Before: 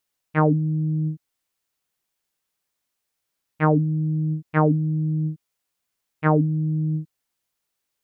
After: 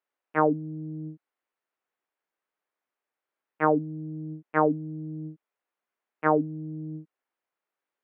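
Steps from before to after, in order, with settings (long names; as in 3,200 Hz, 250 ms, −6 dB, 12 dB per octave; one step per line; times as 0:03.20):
three-way crossover with the lows and the highs turned down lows −23 dB, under 260 Hz, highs −22 dB, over 2,300 Hz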